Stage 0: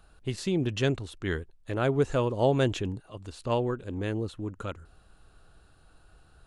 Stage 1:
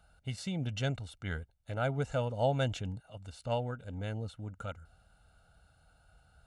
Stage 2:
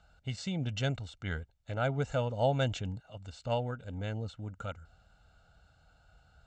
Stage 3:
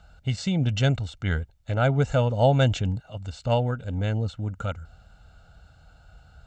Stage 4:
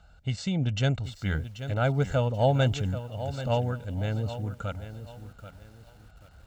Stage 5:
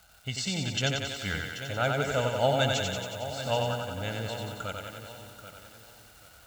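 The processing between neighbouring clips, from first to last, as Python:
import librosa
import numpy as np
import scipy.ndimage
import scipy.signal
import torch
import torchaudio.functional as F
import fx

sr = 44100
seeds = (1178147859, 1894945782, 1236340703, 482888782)

y1 = scipy.signal.sosfilt(scipy.signal.butter(2, 44.0, 'highpass', fs=sr, output='sos'), x)
y1 = y1 + 0.79 * np.pad(y1, (int(1.4 * sr / 1000.0), 0))[:len(y1)]
y1 = y1 * 10.0 ** (-7.5 / 20.0)
y2 = scipy.signal.sosfilt(scipy.signal.ellip(4, 1.0, 40, 7700.0, 'lowpass', fs=sr, output='sos'), y1)
y2 = y2 * 10.0 ** (2.0 / 20.0)
y3 = fx.low_shelf(y2, sr, hz=210.0, db=5.0)
y3 = y3 * 10.0 ** (7.5 / 20.0)
y4 = fx.echo_crushed(y3, sr, ms=784, feedback_pct=35, bits=8, wet_db=-11.5)
y4 = y4 * 10.0 ** (-3.5 / 20.0)
y5 = fx.dmg_crackle(y4, sr, seeds[0], per_s=540.0, level_db=-53.0)
y5 = fx.tilt_eq(y5, sr, slope=2.5)
y5 = fx.echo_thinned(y5, sr, ms=91, feedback_pct=70, hz=190.0, wet_db=-3.5)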